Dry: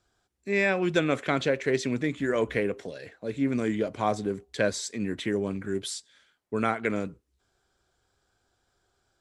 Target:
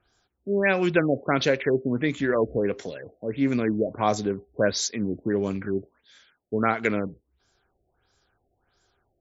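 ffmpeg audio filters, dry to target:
-af "aemphasis=mode=production:type=50fm,afftfilt=real='re*lt(b*sr/1024,730*pow(7600/730,0.5+0.5*sin(2*PI*1.5*pts/sr)))':imag='im*lt(b*sr/1024,730*pow(7600/730,0.5+0.5*sin(2*PI*1.5*pts/sr)))':win_size=1024:overlap=0.75,volume=1.5"

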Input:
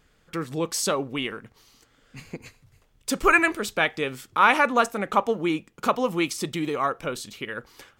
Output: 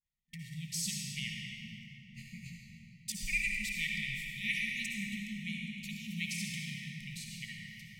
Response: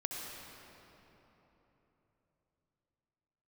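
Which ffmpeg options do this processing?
-filter_complex "[0:a]agate=range=0.0224:threshold=0.00398:ratio=3:detection=peak,asettb=1/sr,asplit=3[s0][s1][s2];[s0]atrim=end=1.294[s3];[s1]atrim=start=1.29:end=3.12,asetpts=PTS-STARTPTS,afade=t=in:d=0.004:c=qsin,afade=t=out:st=1.826:d=0.004:c=qsin,asplit=2[s4][s5];[s5]adelay=23,volume=0.708[s6];[s4][s6]amix=inputs=2:normalize=0,atrim=end_sample=80703[s7];[s2]atrim=start=3.116[s8];[s3][s7]acrossfade=d=0.004:c1=hsin:c2=qsin[s9];[s9][s8]acrossfade=d=0.004:c1=qsin:c2=hsin[s10];[1:a]atrim=start_sample=2205,asetrate=48510,aresample=44100[s11];[s10][s11]afir=irnorm=-1:irlink=0,afftfilt=real='re*(1-between(b*sr/4096,230,1800))':imag='im*(1-between(b*sr/4096,230,1800))':win_size=4096:overlap=0.75,volume=0.473"

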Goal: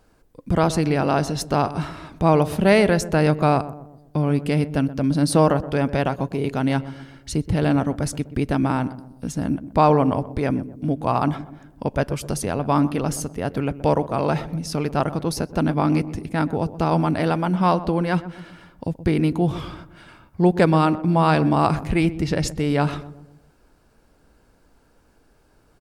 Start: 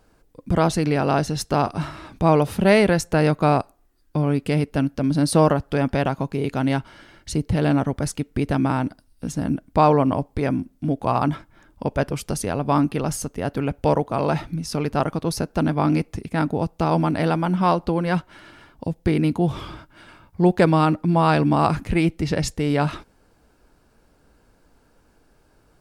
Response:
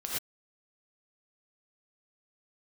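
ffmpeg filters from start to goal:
-filter_complex "[0:a]asplit=2[s0][s1];[s1]adelay=125,lowpass=f=840:p=1,volume=0.224,asplit=2[s2][s3];[s3]adelay=125,lowpass=f=840:p=1,volume=0.52,asplit=2[s4][s5];[s5]adelay=125,lowpass=f=840:p=1,volume=0.52,asplit=2[s6][s7];[s7]adelay=125,lowpass=f=840:p=1,volume=0.52,asplit=2[s8][s9];[s9]adelay=125,lowpass=f=840:p=1,volume=0.52[s10];[s0][s2][s4][s6][s8][s10]amix=inputs=6:normalize=0"

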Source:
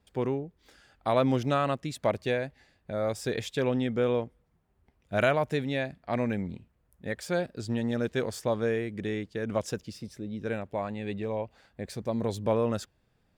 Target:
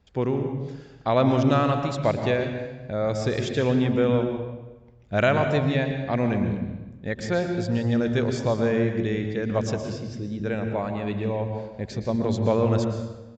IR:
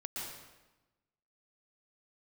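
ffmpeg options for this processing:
-filter_complex "[0:a]asplit=2[s0][s1];[1:a]atrim=start_sample=2205,lowshelf=f=210:g=11[s2];[s1][s2]afir=irnorm=-1:irlink=0,volume=0.794[s3];[s0][s3]amix=inputs=2:normalize=0,aresample=16000,aresample=44100"

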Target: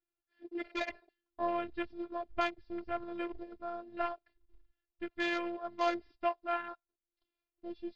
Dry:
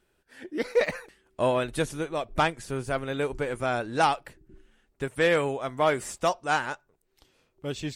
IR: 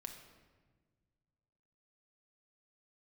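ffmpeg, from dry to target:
-filter_complex "[0:a]asettb=1/sr,asplit=3[s0][s1][s2];[s0]atrim=end=3.404[s3];[s1]atrim=start=3.4:end=4.22,asetpts=PTS-STARTPTS,afade=t=in:d=0.004:c=qsin,afade=t=out:st=0.816:d=0.004:c=qsin,aeval=exprs='0.266*(cos(1*acos(clip(val(0)/0.266,-1,1)))-cos(1*PI/2))+0.0376*(cos(2*acos(clip(val(0)/0.266,-1,1)))-cos(2*PI/2))+0.0422*(cos(3*acos(clip(val(0)/0.266,-1,1)))-cos(3*PI/2))':c=same[s4];[s2]atrim=start=4.216[s5];[s3][s4]acrossfade=d=0.004:c1=hsin:c2=qsin[s6];[s6][s5]acrossfade=d=0.004:c1=qsin:c2=hsin,acrusher=bits=2:mode=log:mix=0:aa=0.000001,aresample=11025,aresample=44100,afwtdn=0.0178,afftfilt=real='hypot(re,im)*cos(PI*b)':imag='0':win_size=512:overlap=0.75,volume=0.531"

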